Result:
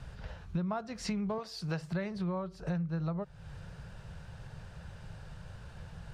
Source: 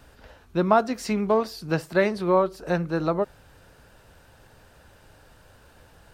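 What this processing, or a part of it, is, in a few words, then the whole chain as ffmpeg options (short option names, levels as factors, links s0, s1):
jukebox: -filter_complex "[0:a]asettb=1/sr,asplit=3[s0][s1][s2];[s0]atrim=end=1.384[s3];[s1]atrim=start=1.38:end=1.81,asetpts=PTS-STARTPTS,afade=t=in:d=0.004:c=qsin,afade=t=out:st=0.426:d=0.004:c=qsin,bass=f=250:g=-12,treble=f=4000:g=3[s4];[s2]atrim=start=1.806[s5];[s3][s4]acrossfade=d=0.004:c1=hsin:c2=qsin[s6];[s6][s5]acrossfade=d=0.004:c1=qsin:c2=hsin,lowpass=7100,lowshelf=f=210:t=q:w=3:g=7.5,acompressor=threshold=0.0224:ratio=6"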